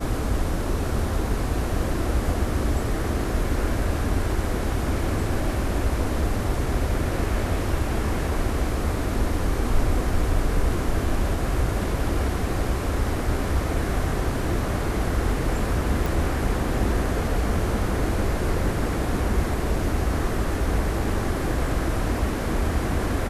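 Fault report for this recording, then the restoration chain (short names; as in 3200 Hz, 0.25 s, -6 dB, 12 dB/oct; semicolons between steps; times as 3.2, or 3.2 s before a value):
16.06 pop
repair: de-click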